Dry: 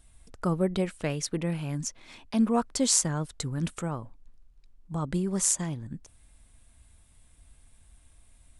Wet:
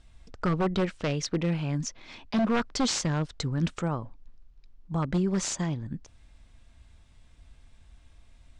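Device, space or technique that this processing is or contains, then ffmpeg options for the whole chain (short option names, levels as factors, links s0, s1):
synthesiser wavefolder: -af "aeval=exprs='0.0841*(abs(mod(val(0)/0.0841+3,4)-2)-1)':c=same,lowpass=f=6000:w=0.5412,lowpass=f=6000:w=1.3066,volume=1.41"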